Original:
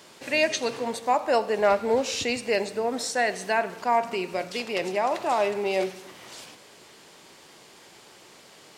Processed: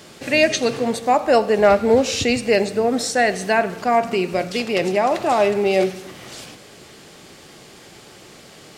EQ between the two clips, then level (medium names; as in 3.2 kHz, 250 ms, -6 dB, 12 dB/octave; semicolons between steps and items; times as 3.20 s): bass shelf 230 Hz +11 dB; band-stop 960 Hz, Q 7.8; +6.0 dB